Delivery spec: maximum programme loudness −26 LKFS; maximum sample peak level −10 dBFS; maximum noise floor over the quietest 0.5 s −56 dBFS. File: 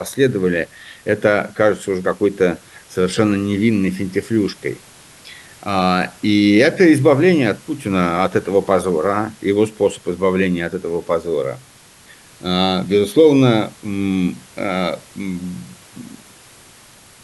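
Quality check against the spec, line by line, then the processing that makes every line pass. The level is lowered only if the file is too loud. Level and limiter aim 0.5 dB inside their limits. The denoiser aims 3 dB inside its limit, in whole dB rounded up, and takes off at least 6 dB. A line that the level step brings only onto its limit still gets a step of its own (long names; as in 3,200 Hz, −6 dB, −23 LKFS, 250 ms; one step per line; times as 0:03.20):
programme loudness −17.5 LKFS: out of spec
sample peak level −1.5 dBFS: out of spec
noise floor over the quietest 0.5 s −46 dBFS: out of spec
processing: broadband denoise 6 dB, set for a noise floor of −46 dBFS
level −9 dB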